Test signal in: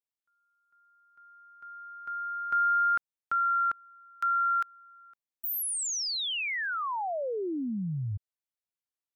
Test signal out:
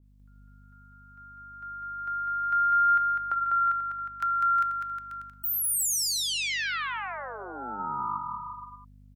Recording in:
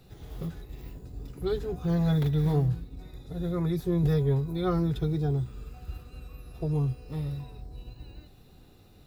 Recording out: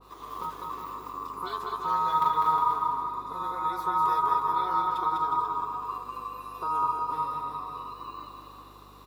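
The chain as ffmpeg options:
-filter_complex "[0:a]bandreject=f=211.3:t=h:w=4,bandreject=f=422.6:t=h:w=4,bandreject=f=633.9:t=h:w=4,bandreject=f=845.2:t=h:w=4,bandreject=f=1056.5:t=h:w=4,bandreject=f=1267.8:t=h:w=4,bandreject=f=1479.1:t=h:w=4,bandreject=f=1690.4:t=h:w=4,bandreject=f=1901.7:t=h:w=4,bandreject=f=2113:t=h:w=4,bandreject=f=2324.3:t=h:w=4,bandreject=f=2535.6:t=h:w=4,bandreject=f=2746.9:t=h:w=4,bandreject=f=2958.2:t=h:w=4,bandreject=f=3169.5:t=h:w=4,bandreject=f=3380.8:t=h:w=4,bandreject=f=3592.1:t=h:w=4,bandreject=f=3803.4:t=h:w=4,bandreject=f=4014.7:t=h:w=4,bandreject=f=4226:t=h:w=4,bandreject=f=4437.3:t=h:w=4,bandreject=f=4648.6:t=h:w=4,bandreject=f=4859.9:t=h:w=4,bandreject=f=5071.2:t=h:w=4,bandreject=f=5282.5:t=h:w=4,bandreject=f=5493.8:t=h:w=4,bandreject=f=5705.1:t=h:w=4,bandreject=f=5916.4:t=h:w=4,bandreject=f=6127.7:t=h:w=4,bandreject=f=6339:t=h:w=4,bandreject=f=6550.3:t=h:w=4,bandreject=f=6761.6:t=h:w=4,bandreject=f=6972.9:t=h:w=4,bandreject=f=7184.2:t=h:w=4,bandreject=f=7395.5:t=h:w=4,bandreject=f=7606.8:t=h:w=4,bandreject=f=7818.1:t=h:w=4,acrossover=split=250|1300[s0][s1][s2];[s0]aeval=exprs='val(0)*sin(2*PI*1100*n/s)':c=same[s3];[s1]acompressor=threshold=0.00316:ratio=5:release=191:detection=peak[s4];[s3][s4][s2]amix=inputs=3:normalize=0,aeval=exprs='val(0)+0.000708*(sin(2*PI*50*n/s)+sin(2*PI*2*50*n/s)/2+sin(2*PI*3*50*n/s)/3+sin(2*PI*4*50*n/s)/4+sin(2*PI*5*50*n/s)/5)':c=same,acompressor=mode=upward:threshold=0.00178:ratio=2.5:attack=0.24:release=197:knee=2.83:detection=peak,aecho=1:1:200|360|488|590.4|672.3:0.631|0.398|0.251|0.158|0.1,adynamicequalizer=threshold=0.00891:dfrequency=1800:dqfactor=0.7:tfrequency=1800:tqfactor=0.7:attack=5:release=100:ratio=0.375:range=3:mode=cutabove:tftype=highshelf,volume=1.5"

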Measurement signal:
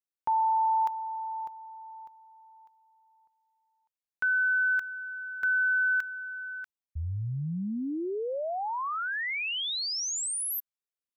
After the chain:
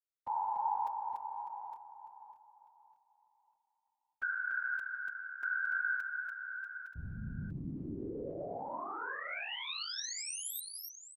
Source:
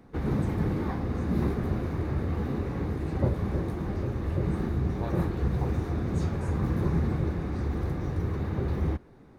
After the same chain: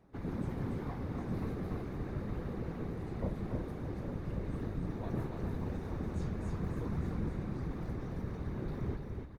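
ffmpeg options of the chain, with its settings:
-af "afftfilt=real='hypot(re,im)*cos(2*PI*random(0))':imag='hypot(re,im)*sin(2*PI*random(1))':win_size=512:overlap=0.75,aecho=1:1:289|861:0.596|0.316,volume=0.596"

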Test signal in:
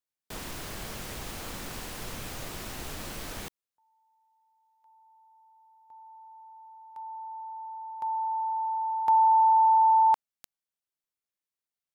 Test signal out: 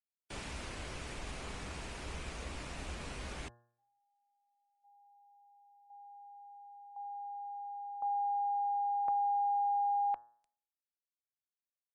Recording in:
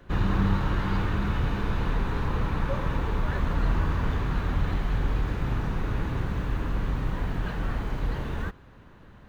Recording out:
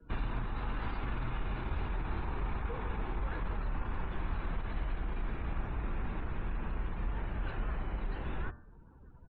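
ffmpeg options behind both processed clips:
-af "alimiter=limit=0.1:level=0:latency=1:release=17,afftdn=nr=26:nf=-51,equalizer=f=2500:t=o:w=0.51:g=4.5,acompressor=threshold=0.0501:ratio=6:attack=15:release=624:knee=1:detection=rms,afreqshift=-77,bandreject=f=118.3:t=h:w=4,bandreject=f=236.6:t=h:w=4,bandreject=f=354.9:t=h:w=4,bandreject=f=473.2:t=h:w=4,bandreject=f=591.5:t=h:w=4,bandreject=f=709.8:t=h:w=4,bandreject=f=828.1:t=h:w=4,bandreject=f=946.4:t=h:w=4,bandreject=f=1064.7:t=h:w=4,bandreject=f=1183:t=h:w=4,bandreject=f=1301.3:t=h:w=4,bandreject=f=1419.6:t=h:w=4,bandreject=f=1537.9:t=h:w=4,bandreject=f=1656.2:t=h:w=4,bandreject=f=1774.5:t=h:w=4,aresample=22050,aresample=44100,adynamicequalizer=threshold=0.00501:dfrequency=1900:dqfactor=0.7:tfrequency=1900:tqfactor=0.7:attack=5:release=100:ratio=0.375:range=1.5:mode=cutabove:tftype=highshelf,volume=0.668"

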